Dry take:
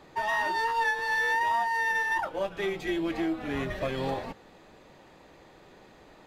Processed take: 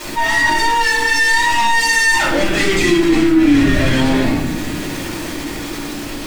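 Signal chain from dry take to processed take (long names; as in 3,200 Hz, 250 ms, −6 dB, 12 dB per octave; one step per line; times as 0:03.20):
source passing by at 0:02.92, 6 m/s, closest 6.7 metres
soft clipping −36.5 dBFS, distortion −7 dB
octave-band graphic EQ 500/1,000/2,000/8,000 Hz −8/−5/+3/+10 dB
bit reduction 10 bits
parametric band 300 Hz +11 dB 0.57 octaves
rectangular room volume 180 cubic metres, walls mixed, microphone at 5.4 metres
envelope flattener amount 50%
level +4.5 dB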